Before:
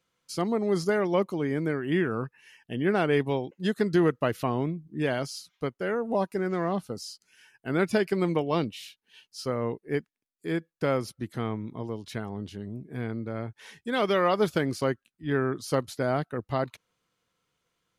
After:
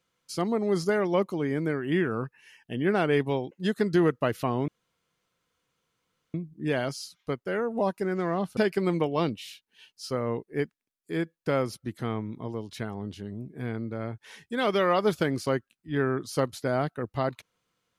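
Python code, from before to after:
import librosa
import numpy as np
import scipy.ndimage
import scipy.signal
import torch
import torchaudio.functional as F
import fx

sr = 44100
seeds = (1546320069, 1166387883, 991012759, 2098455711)

y = fx.edit(x, sr, fx.insert_room_tone(at_s=4.68, length_s=1.66),
    fx.cut(start_s=6.91, length_s=1.01), tone=tone)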